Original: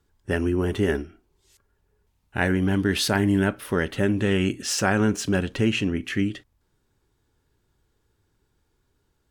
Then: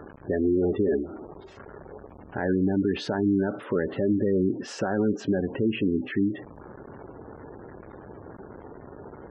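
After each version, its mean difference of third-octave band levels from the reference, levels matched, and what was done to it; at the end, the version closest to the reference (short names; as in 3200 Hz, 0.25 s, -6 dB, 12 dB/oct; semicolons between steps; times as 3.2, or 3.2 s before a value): 11.0 dB: zero-crossing step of -33 dBFS; band-pass 470 Hz, Q 0.65; spectral gate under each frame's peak -20 dB strong; limiter -18 dBFS, peak gain reduction 8 dB; gain +2.5 dB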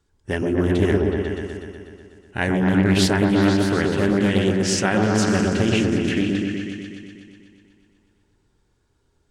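7.0 dB: polynomial smoothing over 9 samples; high shelf 6100 Hz +6.5 dB; on a send: repeats that get brighter 0.123 s, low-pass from 750 Hz, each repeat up 1 oct, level 0 dB; on the sum: Doppler distortion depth 0.25 ms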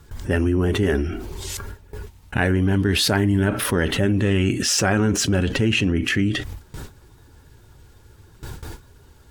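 4.0 dB: bin magnitudes rounded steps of 15 dB; gate with hold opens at -58 dBFS; bell 79 Hz +4 dB 1.5 oct; fast leveller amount 70%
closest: third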